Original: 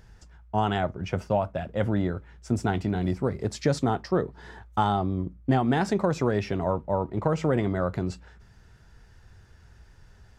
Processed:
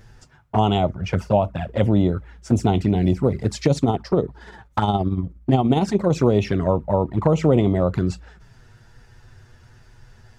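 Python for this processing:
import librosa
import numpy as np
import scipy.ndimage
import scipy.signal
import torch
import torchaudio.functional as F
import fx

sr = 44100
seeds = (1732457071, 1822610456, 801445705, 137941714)

y = fx.tremolo(x, sr, hz=17.0, depth=0.49, at=(3.66, 6.1))
y = fx.env_flanger(y, sr, rest_ms=9.6, full_db=-21.5)
y = F.gain(torch.from_numpy(y), 8.5).numpy()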